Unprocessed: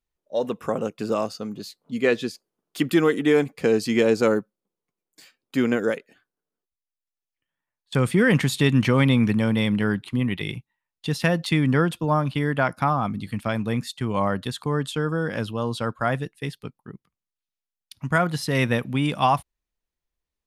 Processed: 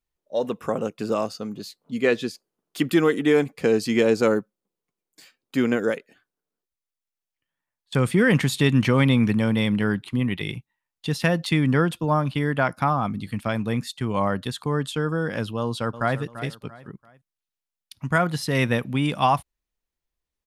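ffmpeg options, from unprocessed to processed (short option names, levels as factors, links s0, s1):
-filter_complex "[0:a]asplit=2[s0][s1];[s1]afade=t=in:st=15.59:d=0.01,afade=t=out:st=16.19:d=0.01,aecho=0:1:340|680|1020:0.223872|0.0783552|0.0274243[s2];[s0][s2]amix=inputs=2:normalize=0"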